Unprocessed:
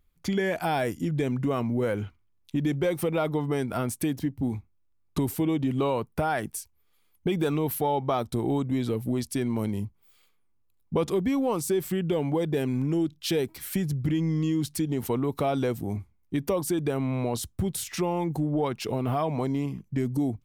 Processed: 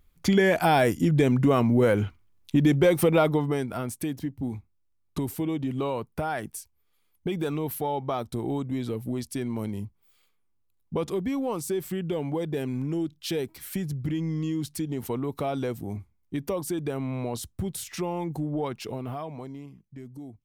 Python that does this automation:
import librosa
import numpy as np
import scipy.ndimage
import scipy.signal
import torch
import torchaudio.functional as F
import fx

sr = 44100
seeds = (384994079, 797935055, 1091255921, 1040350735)

y = fx.gain(x, sr, db=fx.line((3.19, 6.0), (3.76, -3.0), (18.74, -3.0), (19.78, -15.0)))